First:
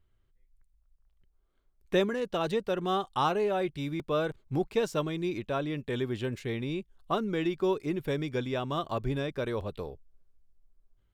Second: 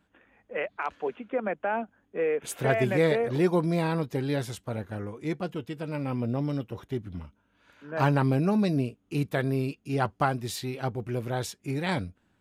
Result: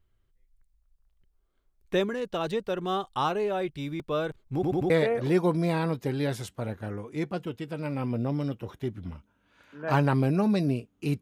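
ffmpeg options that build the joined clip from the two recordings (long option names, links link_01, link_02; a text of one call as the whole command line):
ffmpeg -i cue0.wav -i cue1.wav -filter_complex "[0:a]apad=whole_dur=11.21,atrim=end=11.21,asplit=4[link_01][link_02][link_03][link_04];[link_01]atrim=end=4.632[link_05];[link_02]atrim=start=4.538:end=4.632[link_06];[link_03]atrim=start=4.538:end=4.632[link_07];[link_04]atrim=start=4.538:end=4.632[link_08];[1:a]atrim=start=2.988:end=9.3[link_09];[link_05][link_06]acrossfade=duration=0.004:curve1=hsin:curve2=hsin[link_10];[link_10][link_07]acrossfade=duration=0.004:curve1=hsin:curve2=hsin[link_11];[link_11][link_08]acrossfade=duration=0.004:curve1=hsin:curve2=hsin[link_12];[link_12][link_09]acrossfade=duration=0.004:curve1=hsin:curve2=hsin" out.wav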